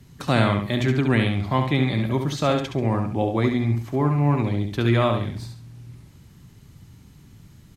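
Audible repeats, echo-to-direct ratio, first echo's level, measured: 2, −5.5 dB, −6.0 dB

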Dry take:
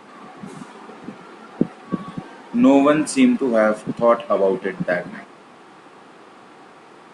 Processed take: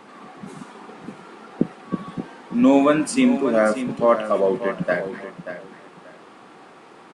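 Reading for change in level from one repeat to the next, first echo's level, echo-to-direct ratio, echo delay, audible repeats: −14.0 dB, −11.0 dB, −11.0 dB, 584 ms, 2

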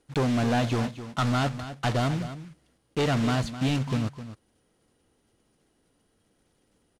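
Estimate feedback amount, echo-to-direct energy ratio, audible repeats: repeats not evenly spaced, −12.5 dB, 1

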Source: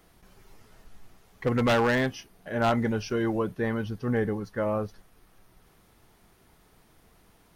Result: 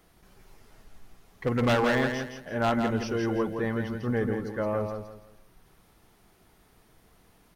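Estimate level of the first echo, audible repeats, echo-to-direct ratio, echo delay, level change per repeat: −6.0 dB, 3, −5.5 dB, 167 ms, −10.5 dB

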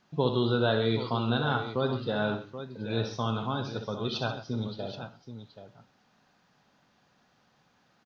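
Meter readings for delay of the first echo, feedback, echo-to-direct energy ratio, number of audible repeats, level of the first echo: 62 ms, repeats not evenly spaced, −5.5 dB, 3, −8.5 dB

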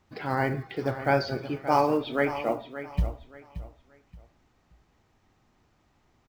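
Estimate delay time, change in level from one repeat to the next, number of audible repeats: 576 ms, −11.0 dB, 3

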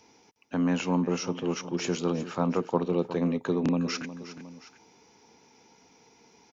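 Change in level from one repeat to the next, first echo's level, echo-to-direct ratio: −5.0 dB, −14.0 dB, −13.0 dB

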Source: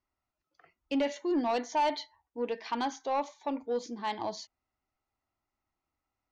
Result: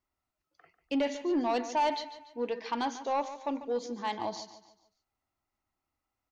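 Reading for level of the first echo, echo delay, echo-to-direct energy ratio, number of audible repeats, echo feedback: −13.0 dB, 145 ms, −12.5 dB, 3, 39%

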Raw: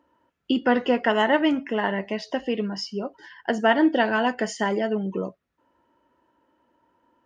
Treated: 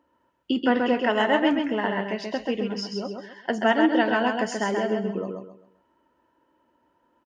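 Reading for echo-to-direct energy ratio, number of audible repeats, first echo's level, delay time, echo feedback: −4.0 dB, 3, −4.5 dB, 132 ms, 31%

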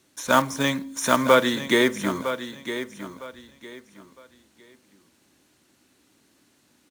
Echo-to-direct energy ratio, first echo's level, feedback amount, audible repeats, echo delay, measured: −10.5 dB, −11.0 dB, 26%, 3, 958 ms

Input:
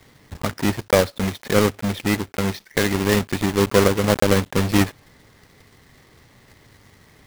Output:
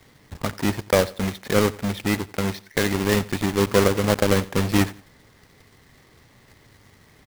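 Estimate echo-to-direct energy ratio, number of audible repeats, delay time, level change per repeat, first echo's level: −20.0 dB, 2, 89 ms, −10.0 dB, −20.5 dB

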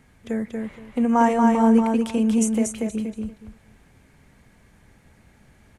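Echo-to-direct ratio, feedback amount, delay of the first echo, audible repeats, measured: −3.5 dB, 20%, 235 ms, 3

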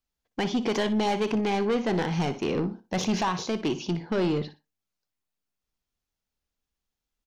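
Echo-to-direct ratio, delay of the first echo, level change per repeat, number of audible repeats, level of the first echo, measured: −14.0 dB, 60 ms, −13.0 dB, 2, −14.0 dB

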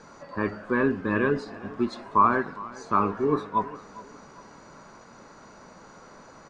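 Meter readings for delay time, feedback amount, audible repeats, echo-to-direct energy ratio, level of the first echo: 407 ms, 36%, 2, −18.5 dB, −19.0 dB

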